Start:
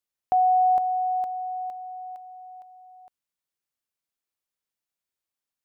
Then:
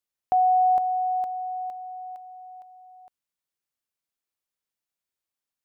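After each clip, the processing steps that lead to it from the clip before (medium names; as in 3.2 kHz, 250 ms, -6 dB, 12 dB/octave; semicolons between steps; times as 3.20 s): no audible change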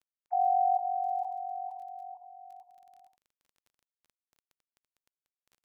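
formants replaced by sine waves; gated-style reverb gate 90 ms rising, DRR 8 dB; crackle 15 per s -42 dBFS; trim -7.5 dB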